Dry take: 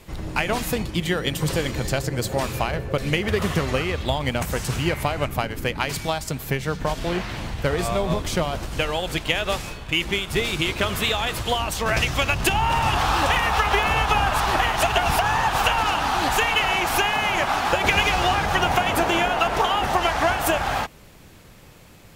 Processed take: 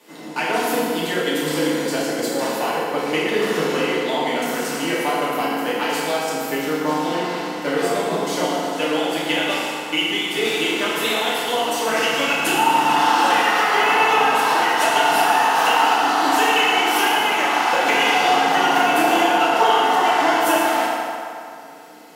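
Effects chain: steep high-pass 200 Hz 36 dB/oct; notch 2400 Hz, Q 26; FDN reverb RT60 2.5 s, low-frequency decay 0.75×, high-frequency decay 0.65×, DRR -8.5 dB; gain -5 dB

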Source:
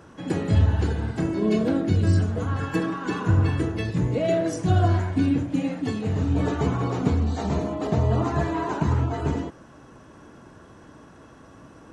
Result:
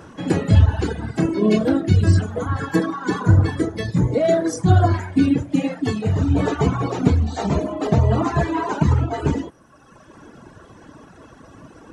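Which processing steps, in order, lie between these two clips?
reverb removal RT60 1.4 s; 2.38–4.94 bell 2700 Hz -13.5 dB 0.25 oct; gain +7 dB

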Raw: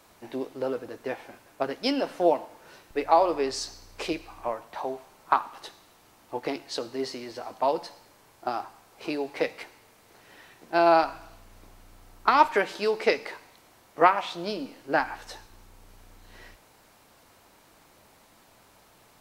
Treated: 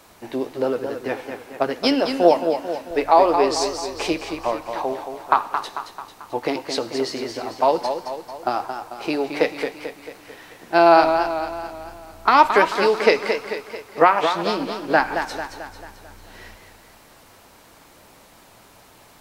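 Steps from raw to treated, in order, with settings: maximiser +8 dB; warbling echo 0.221 s, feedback 52%, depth 96 cents, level -7.5 dB; gain -1 dB

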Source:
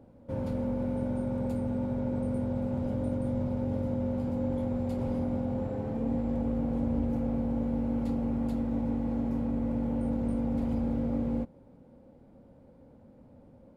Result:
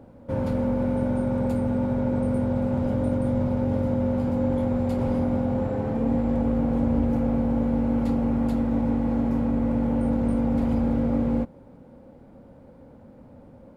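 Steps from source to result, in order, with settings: bell 1400 Hz +4 dB 1.6 oct; gain +6.5 dB

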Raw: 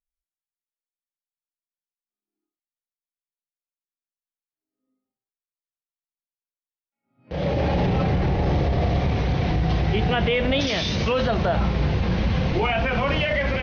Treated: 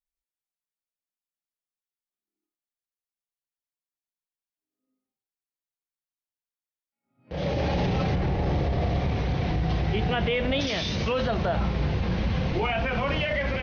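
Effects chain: 7.36–8.14 high shelf 4800 Hz -> 3700 Hz +9.5 dB; gain -4 dB

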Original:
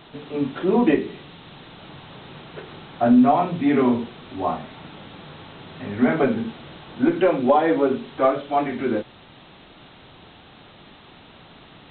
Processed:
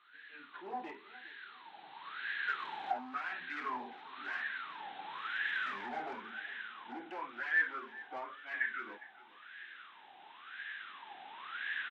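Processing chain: Doppler pass-by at 4.99, 12 m/s, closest 13 m; recorder AGC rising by 6.5 dB/s; HPF 180 Hz 12 dB/oct; tilt shelf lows -7.5 dB, about 1300 Hz; hard clip -30 dBFS, distortion -8 dB; band shelf 800 Hz -9.5 dB; wah 0.96 Hz 780–1700 Hz, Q 16; feedback echo 0.408 s, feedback 35%, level -19 dB; gain +18 dB

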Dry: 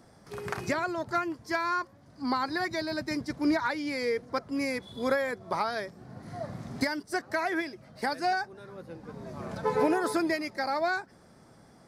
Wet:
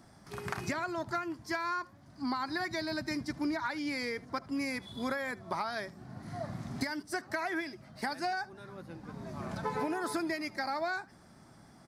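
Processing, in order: bell 480 Hz -9.5 dB 0.46 oct; compressor 4:1, threshold -31 dBFS, peak gain reduction 8 dB; on a send: echo 76 ms -23 dB

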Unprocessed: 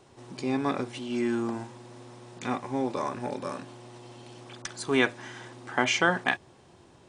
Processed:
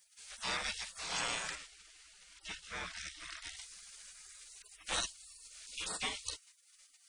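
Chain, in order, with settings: spectral gate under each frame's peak -30 dB weak; 1.55–3.57 high shelf 4500 Hz -10.5 dB; gain +12 dB

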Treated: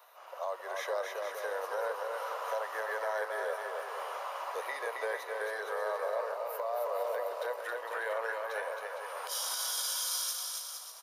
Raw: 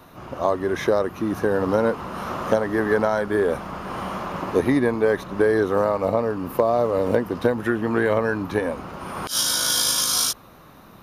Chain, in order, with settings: steep high-pass 510 Hz 48 dB/oct; high shelf 11000 Hz +7.5 dB; limiter -16.5 dBFS, peak gain reduction 10.5 dB; resonator 970 Hz, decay 0.33 s, mix 70%; bouncing-ball echo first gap 0.27 s, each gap 0.7×, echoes 5

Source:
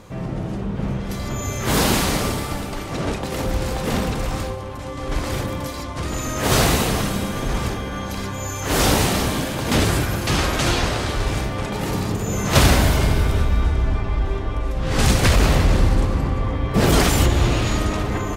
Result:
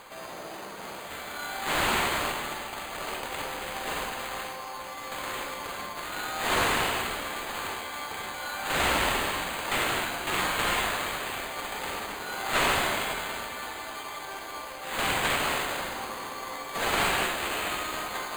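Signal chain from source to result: HPF 830 Hz 12 dB/oct; reverse; upward compressor, threshold -30 dBFS; reverse; careless resampling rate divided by 8×, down none, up hold; tube stage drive 20 dB, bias 0.75; on a send at -3 dB: reverb RT60 0.75 s, pre-delay 38 ms; on the sum: slew limiter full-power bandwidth 430 Hz

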